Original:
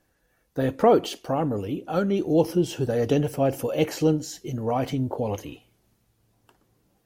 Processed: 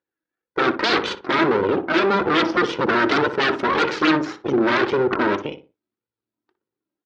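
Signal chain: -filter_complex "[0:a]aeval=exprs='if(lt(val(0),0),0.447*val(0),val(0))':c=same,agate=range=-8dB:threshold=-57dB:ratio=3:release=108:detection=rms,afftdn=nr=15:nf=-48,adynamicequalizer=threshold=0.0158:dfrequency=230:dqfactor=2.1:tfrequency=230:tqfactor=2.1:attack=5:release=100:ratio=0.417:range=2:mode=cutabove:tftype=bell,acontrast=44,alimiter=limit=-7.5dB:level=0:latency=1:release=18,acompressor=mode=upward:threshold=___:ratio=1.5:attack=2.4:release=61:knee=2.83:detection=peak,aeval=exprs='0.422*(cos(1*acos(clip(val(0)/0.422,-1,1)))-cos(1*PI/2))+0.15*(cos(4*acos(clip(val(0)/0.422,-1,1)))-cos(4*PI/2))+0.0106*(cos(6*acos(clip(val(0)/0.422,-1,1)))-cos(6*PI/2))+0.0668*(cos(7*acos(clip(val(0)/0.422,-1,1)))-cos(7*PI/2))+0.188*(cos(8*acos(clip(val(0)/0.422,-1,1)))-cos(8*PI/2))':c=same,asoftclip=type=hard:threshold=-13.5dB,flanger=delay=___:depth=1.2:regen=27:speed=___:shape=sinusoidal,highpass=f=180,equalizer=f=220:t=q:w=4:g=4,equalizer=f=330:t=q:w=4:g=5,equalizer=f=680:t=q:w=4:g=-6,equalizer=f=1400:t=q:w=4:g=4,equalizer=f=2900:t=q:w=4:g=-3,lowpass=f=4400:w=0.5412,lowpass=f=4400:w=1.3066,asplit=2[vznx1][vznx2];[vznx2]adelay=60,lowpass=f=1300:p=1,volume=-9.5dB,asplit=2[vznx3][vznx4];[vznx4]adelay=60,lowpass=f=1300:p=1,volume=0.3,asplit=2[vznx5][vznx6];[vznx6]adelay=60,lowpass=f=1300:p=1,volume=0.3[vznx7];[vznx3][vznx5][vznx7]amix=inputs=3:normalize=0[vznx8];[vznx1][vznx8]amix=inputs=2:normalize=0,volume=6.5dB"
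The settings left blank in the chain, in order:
-35dB, 2, 1.8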